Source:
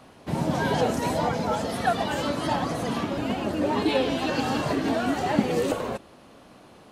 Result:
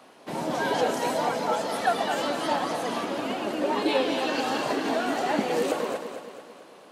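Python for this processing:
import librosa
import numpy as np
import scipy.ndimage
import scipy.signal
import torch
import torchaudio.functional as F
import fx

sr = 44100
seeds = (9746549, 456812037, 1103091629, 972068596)

y = scipy.signal.sosfilt(scipy.signal.butter(2, 310.0, 'highpass', fs=sr, output='sos'), x)
y = fx.echo_feedback(y, sr, ms=222, feedback_pct=51, wet_db=-8.5)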